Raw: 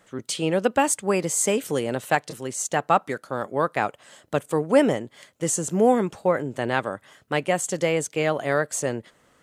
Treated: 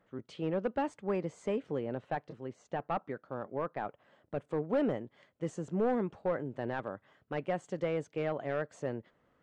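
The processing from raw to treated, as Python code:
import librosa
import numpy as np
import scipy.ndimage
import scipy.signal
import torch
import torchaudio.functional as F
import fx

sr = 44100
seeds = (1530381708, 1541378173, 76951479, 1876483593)

y = np.clip(10.0 ** (15.0 / 20.0) * x, -1.0, 1.0) / 10.0 ** (15.0 / 20.0)
y = fx.spacing_loss(y, sr, db_at_10k=fx.steps((0.0, 37.0), (1.57, 44.0), (4.39, 31.0)))
y = F.gain(torch.from_numpy(y), -8.0).numpy()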